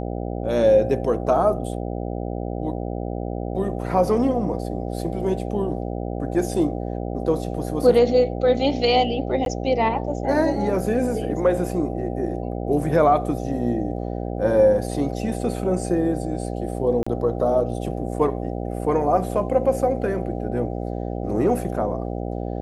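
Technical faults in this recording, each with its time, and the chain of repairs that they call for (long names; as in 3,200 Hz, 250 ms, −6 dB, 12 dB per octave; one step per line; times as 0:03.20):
mains buzz 60 Hz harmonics 13 −28 dBFS
0:09.45–0:09.46: drop-out 12 ms
0:17.03–0:17.07: drop-out 35 ms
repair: hum removal 60 Hz, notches 13
repair the gap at 0:09.45, 12 ms
repair the gap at 0:17.03, 35 ms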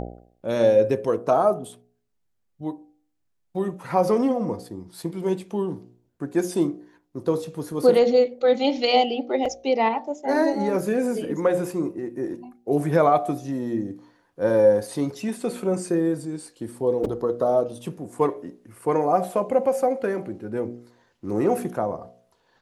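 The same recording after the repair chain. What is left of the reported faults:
none of them is left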